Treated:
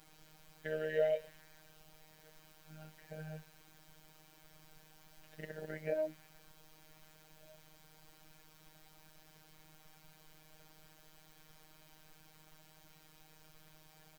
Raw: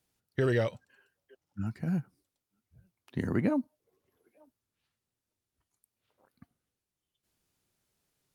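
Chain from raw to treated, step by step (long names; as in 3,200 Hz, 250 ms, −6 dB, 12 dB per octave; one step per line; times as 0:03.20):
formant filter e
comb filter 1.4 ms, depth 50%
background noise pink −66 dBFS
time stretch by overlap-add 1.7×, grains 25 ms
phases set to zero 156 Hz
on a send: delay with a high-pass on its return 122 ms, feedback 83%, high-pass 5,200 Hz, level −7 dB
on the sum: level +7.5 dB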